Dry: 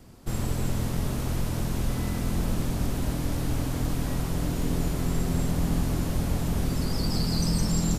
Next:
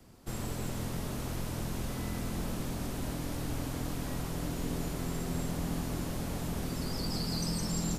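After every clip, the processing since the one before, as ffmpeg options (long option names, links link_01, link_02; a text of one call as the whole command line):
ffmpeg -i in.wav -filter_complex "[0:a]lowshelf=frequency=230:gain=-3.5,acrossover=split=140|940|4100[link_01][link_02][link_03][link_04];[link_01]alimiter=level_in=3dB:limit=-24dB:level=0:latency=1:release=236,volume=-3dB[link_05];[link_05][link_02][link_03][link_04]amix=inputs=4:normalize=0,volume=-4.5dB" out.wav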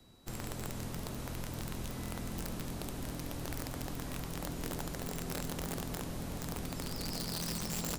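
ffmpeg -i in.wav -af "aeval=exprs='val(0)+0.000794*sin(2*PI*3900*n/s)':channel_layout=same,aeval=exprs='(mod(20*val(0)+1,2)-1)/20':channel_layout=same,volume=-4.5dB" out.wav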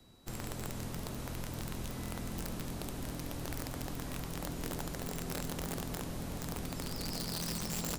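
ffmpeg -i in.wav -af anull out.wav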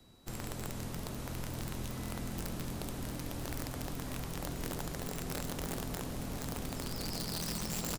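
ffmpeg -i in.wav -af "aecho=1:1:1033:0.299" out.wav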